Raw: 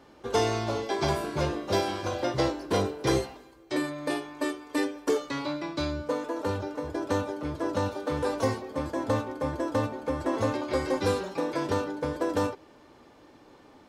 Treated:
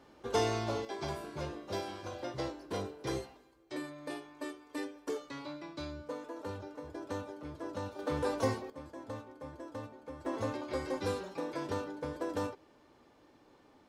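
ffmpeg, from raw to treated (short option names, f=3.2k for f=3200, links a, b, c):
-af "asetnsamples=n=441:p=0,asendcmd='0.85 volume volume -11.5dB;7.99 volume volume -4.5dB;8.7 volume volume -16dB;10.25 volume volume -8.5dB',volume=-5dB"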